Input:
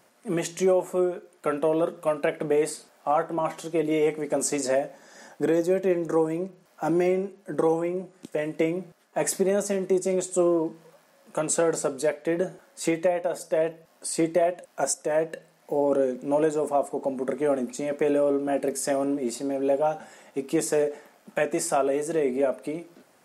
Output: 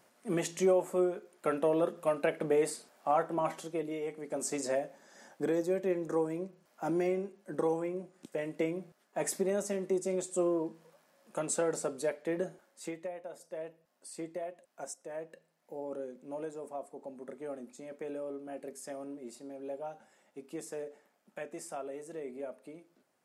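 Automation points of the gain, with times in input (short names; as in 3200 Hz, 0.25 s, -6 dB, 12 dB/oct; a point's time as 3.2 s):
3.54 s -5 dB
4.01 s -15 dB
4.56 s -8 dB
12.48 s -8 dB
12.99 s -17 dB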